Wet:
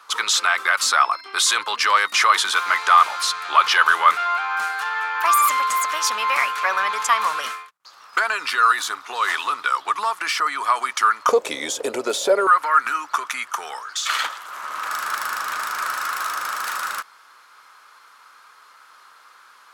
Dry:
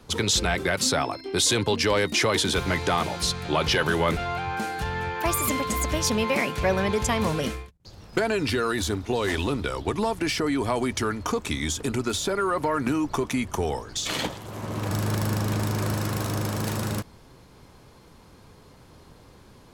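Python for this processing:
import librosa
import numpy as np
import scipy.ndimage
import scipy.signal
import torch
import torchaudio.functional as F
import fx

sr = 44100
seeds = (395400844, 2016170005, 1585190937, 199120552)

y = fx.highpass_res(x, sr, hz=fx.steps((0.0, 1200.0), (11.29, 530.0), (12.47, 1300.0)), q=4.9)
y = y * librosa.db_to_amplitude(3.0)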